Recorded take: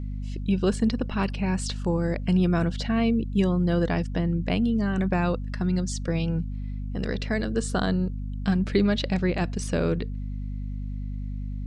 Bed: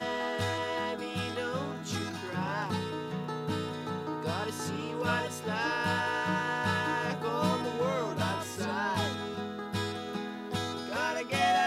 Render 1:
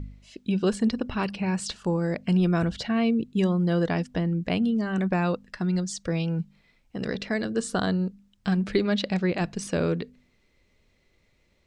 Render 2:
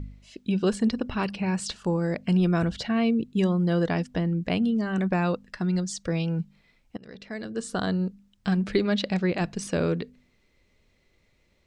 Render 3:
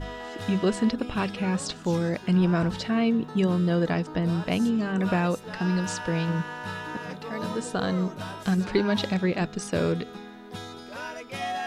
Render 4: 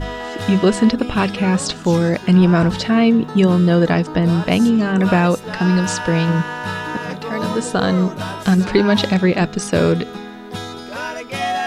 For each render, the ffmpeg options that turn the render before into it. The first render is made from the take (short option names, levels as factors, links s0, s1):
-af "bandreject=f=50:t=h:w=4,bandreject=f=100:t=h:w=4,bandreject=f=150:t=h:w=4,bandreject=f=200:t=h:w=4,bandreject=f=250:t=h:w=4"
-filter_complex "[0:a]asplit=2[s0][s1];[s0]atrim=end=6.97,asetpts=PTS-STARTPTS,afade=t=out:st=6.966:d=0.004:c=hsin:silence=0.0668344[s2];[s1]atrim=start=6.97,asetpts=PTS-STARTPTS,afade=t=in:d=1.08:silence=0.0668344[s3];[s2][s3]concat=n=2:v=0:a=1"
-filter_complex "[1:a]volume=0.562[s0];[0:a][s0]amix=inputs=2:normalize=0"
-af "volume=3.16,alimiter=limit=0.708:level=0:latency=1"